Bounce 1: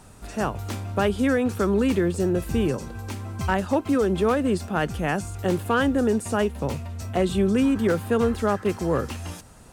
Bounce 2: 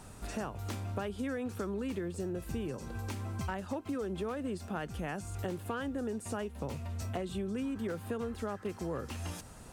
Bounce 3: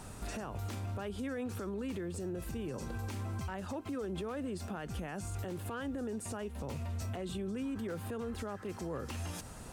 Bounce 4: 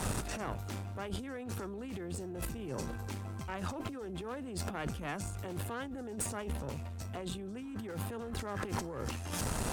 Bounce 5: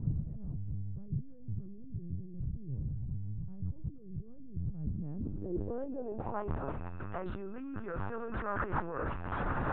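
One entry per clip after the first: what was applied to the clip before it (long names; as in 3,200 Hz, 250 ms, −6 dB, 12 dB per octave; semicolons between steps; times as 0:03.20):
downward compressor 5 to 1, threshold −33 dBFS, peak gain reduction 14.5 dB; level −2 dB
brickwall limiter −34.5 dBFS, peak gain reduction 11.5 dB; level +3 dB
compressor whose output falls as the input rises −46 dBFS, ratio −1; tube saturation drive 37 dB, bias 0.75; level +11 dB
steady tone 2,600 Hz −61 dBFS; linear-prediction vocoder at 8 kHz pitch kept; low-pass filter sweep 140 Hz → 1,400 Hz, 0:04.73–0:06.67; level +1.5 dB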